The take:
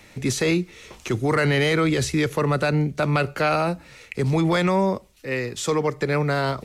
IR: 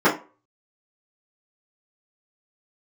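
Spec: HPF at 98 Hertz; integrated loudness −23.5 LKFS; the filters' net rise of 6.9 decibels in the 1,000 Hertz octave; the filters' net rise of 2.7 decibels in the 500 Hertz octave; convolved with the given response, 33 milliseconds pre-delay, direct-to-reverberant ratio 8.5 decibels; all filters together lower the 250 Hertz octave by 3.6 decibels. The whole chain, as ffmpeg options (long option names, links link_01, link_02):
-filter_complex "[0:a]highpass=98,equalizer=frequency=250:width_type=o:gain=-7.5,equalizer=frequency=500:width_type=o:gain=3,equalizer=frequency=1000:width_type=o:gain=8.5,asplit=2[link_01][link_02];[1:a]atrim=start_sample=2205,adelay=33[link_03];[link_02][link_03]afir=irnorm=-1:irlink=0,volume=-30dB[link_04];[link_01][link_04]amix=inputs=2:normalize=0,volume=-3.5dB"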